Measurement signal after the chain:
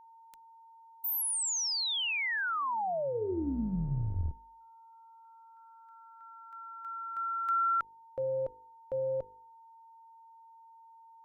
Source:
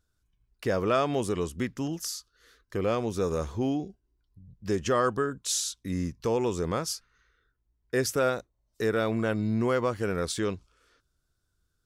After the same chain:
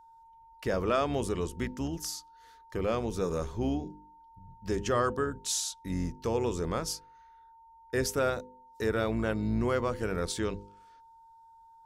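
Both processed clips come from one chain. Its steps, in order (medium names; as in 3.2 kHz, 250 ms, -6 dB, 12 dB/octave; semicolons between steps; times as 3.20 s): octave divider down 2 oct, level -6 dB; de-hum 50.48 Hz, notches 10; whistle 910 Hz -51 dBFS; trim -2.5 dB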